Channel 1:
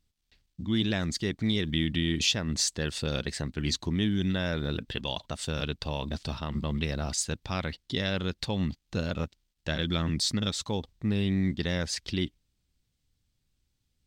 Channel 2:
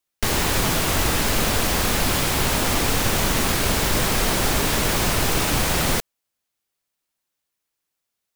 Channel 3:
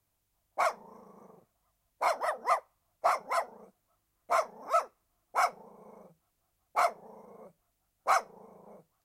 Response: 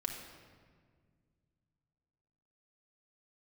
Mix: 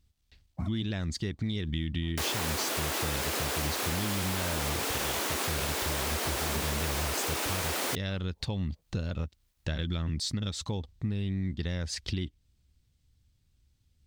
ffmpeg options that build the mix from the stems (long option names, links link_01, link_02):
-filter_complex "[0:a]acontrast=78,volume=-5dB,asplit=2[link_01][link_02];[1:a]highpass=frequency=300:width=0.5412,highpass=frequency=300:width=1.3066,adelay=1950,volume=0.5dB[link_03];[2:a]volume=-14.5dB[link_04];[link_02]apad=whole_len=398785[link_05];[link_04][link_05]sidechaincompress=threshold=-38dB:ratio=8:attack=22:release=111[link_06];[link_01][link_03][link_06]amix=inputs=3:normalize=0,equalizer=frequency=72:width_type=o:width=1.6:gain=10,acompressor=threshold=-30dB:ratio=4"